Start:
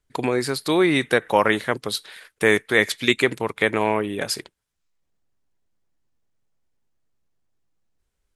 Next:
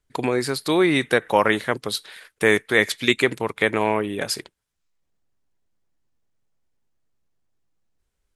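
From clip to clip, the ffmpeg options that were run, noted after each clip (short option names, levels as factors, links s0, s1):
-af anull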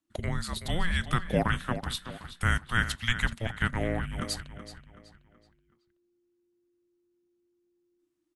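-filter_complex "[0:a]asplit=2[s0][s1];[s1]adelay=376,lowpass=f=4800:p=1,volume=0.282,asplit=2[s2][s3];[s3]adelay=376,lowpass=f=4800:p=1,volume=0.41,asplit=2[s4][s5];[s5]adelay=376,lowpass=f=4800:p=1,volume=0.41,asplit=2[s6][s7];[s7]adelay=376,lowpass=f=4800:p=1,volume=0.41[s8];[s0][s2][s4][s6][s8]amix=inputs=5:normalize=0,afreqshift=-350,volume=0.398"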